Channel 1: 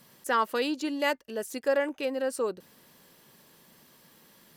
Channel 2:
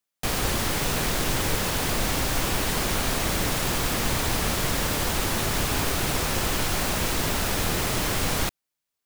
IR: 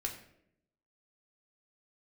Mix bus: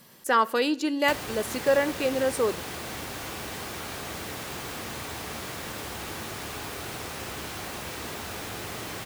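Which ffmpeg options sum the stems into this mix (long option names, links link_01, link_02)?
-filter_complex "[0:a]volume=2.5dB,asplit=2[link_01][link_02];[link_02]volume=-13dB[link_03];[1:a]highpass=82,acrossover=split=330|3800[link_04][link_05][link_06];[link_04]acompressor=threshold=-46dB:ratio=4[link_07];[link_05]acompressor=threshold=-40dB:ratio=4[link_08];[link_06]acompressor=threshold=-45dB:ratio=4[link_09];[link_07][link_08][link_09]amix=inputs=3:normalize=0,adelay=850,volume=-2.5dB,asplit=2[link_10][link_11];[link_11]volume=-3.5dB[link_12];[2:a]atrim=start_sample=2205[link_13];[link_03][link_12]amix=inputs=2:normalize=0[link_14];[link_14][link_13]afir=irnorm=-1:irlink=0[link_15];[link_01][link_10][link_15]amix=inputs=3:normalize=0"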